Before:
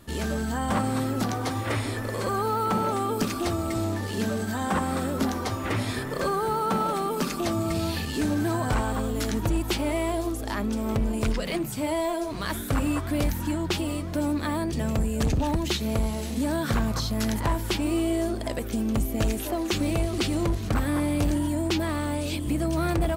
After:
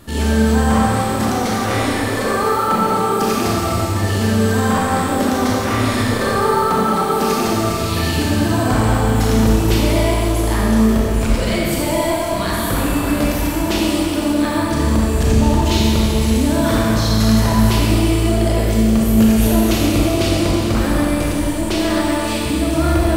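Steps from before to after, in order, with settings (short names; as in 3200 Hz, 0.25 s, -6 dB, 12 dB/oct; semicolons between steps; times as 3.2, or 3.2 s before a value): limiter -22.5 dBFS, peak gain reduction 5 dB; Schroeder reverb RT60 2.7 s, combs from 28 ms, DRR -5 dB; gain +7.5 dB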